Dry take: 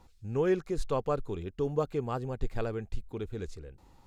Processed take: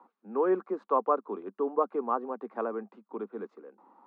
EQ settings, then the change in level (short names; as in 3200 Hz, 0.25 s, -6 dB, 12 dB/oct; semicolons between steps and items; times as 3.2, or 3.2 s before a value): steep high-pass 200 Hz 96 dB/oct; synth low-pass 1100 Hz, resonance Q 3.4; 0.0 dB